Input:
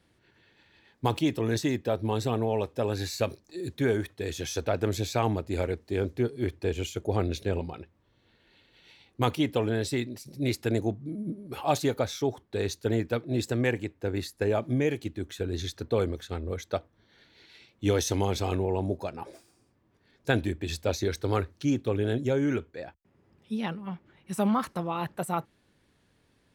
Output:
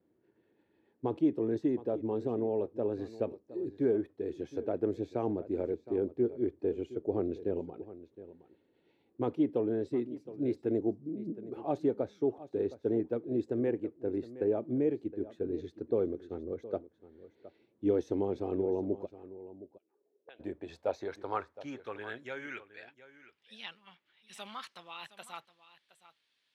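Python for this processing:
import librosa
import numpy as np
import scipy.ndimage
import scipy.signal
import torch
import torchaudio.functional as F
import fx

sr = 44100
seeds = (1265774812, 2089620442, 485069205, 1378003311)

y = fx.quant_float(x, sr, bits=6)
y = fx.filter_sweep_bandpass(y, sr, from_hz=350.0, to_hz=3400.0, start_s=19.69, end_s=23.33, q=1.7)
y = fx.vibrato(y, sr, rate_hz=1.1, depth_cents=8.4)
y = fx.auto_wah(y, sr, base_hz=390.0, top_hz=3000.0, q=5.3, full_db=-35.5, direction='up', at=(19.05, 20.39), fade=0.02)
y = y + 10.0 ** (-16.0 / 20.0) * np.pad(y, (int(716 * sr / 1000.0), 0))[:len(y)]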